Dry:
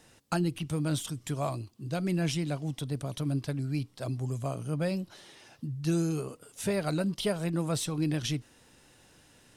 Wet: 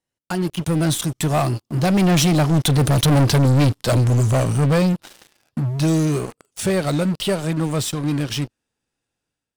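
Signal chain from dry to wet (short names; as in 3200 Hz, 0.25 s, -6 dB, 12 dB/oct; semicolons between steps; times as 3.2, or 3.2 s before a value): Doppler pass-by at 3.26, 17 m/s, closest 8.9 m; AGC gain up to 9 dB; sample leveller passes 5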